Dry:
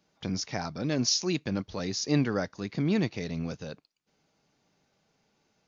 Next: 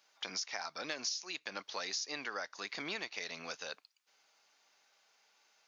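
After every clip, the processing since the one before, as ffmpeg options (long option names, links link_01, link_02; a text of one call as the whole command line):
ffmpeg -i in.wav -af "highpass=1000,acompressor=threshold=-41dB:ratio=10,volume=5.5dB" out.wav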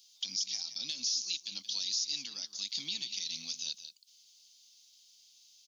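ffmpeg -i in.wav -af "firequalizer=gain_entry='entry(240,0);entry(400,-20);entry(960,-17);entry(1500,-24);entry(3200,11);entry(5000,14)':delay=0.05:min_phase=1,alimiter=limit=-21.5dB:level=0:latency=1:release=52,aecho=1:1:178:0.251,volume=-1.5dB" out.wav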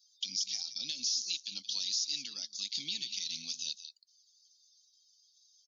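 ffmpeg -i in.wav -af "afftdn=noise_reduction=25:noise_floor=-59" out.wav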